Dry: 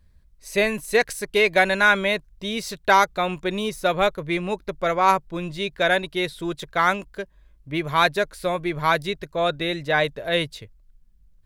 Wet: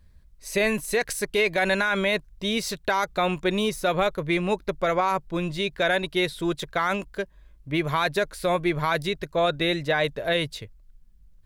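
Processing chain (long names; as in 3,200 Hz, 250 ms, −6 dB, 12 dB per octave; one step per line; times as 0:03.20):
brickwall limiter −15.5 dBFS, peak gain reduction 11.5 dB
level +2 dB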